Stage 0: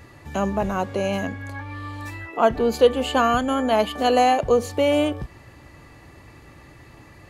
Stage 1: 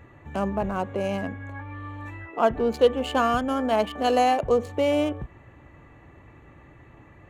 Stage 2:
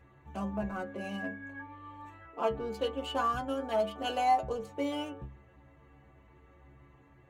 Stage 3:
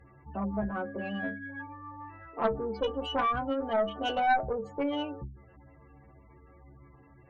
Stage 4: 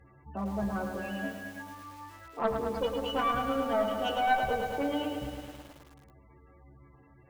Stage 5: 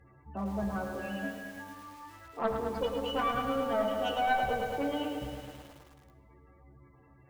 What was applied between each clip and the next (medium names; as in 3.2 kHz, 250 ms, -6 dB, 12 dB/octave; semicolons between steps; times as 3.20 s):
local Wiener filter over 9 samples; trim -3 dB
inharmonic resonator 66 Hz, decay 0.39 s, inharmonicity 0.008
spectral gate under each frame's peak -20 dB strong; Chebyshev shaper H 2 -6 dB, 5 -20 dB, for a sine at -17.5 dBFS
bit-crushed delay 107 ms, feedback 80%, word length 8-bit, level -6 dB; trim -1.5 dB
flange 0.29 Hz, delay 8.3 ms, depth 8.3 ms, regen -80%; reverberation RT60 1.3 s, pre-delay 48 ms, DRR 13.5 dB; trim +3 dB